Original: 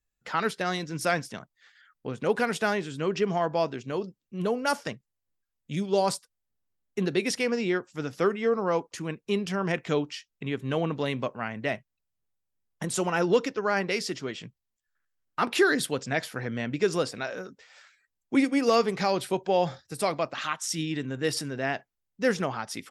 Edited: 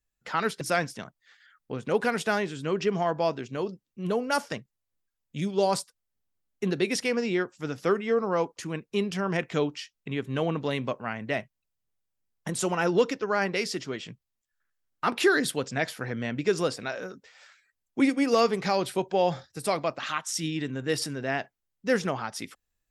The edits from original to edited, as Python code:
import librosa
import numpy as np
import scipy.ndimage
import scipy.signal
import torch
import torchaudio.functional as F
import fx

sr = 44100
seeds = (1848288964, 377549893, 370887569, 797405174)

y = fx.edit(x, sr, fx.cut(start_s=0.61, length_s=0.35), tone=tone)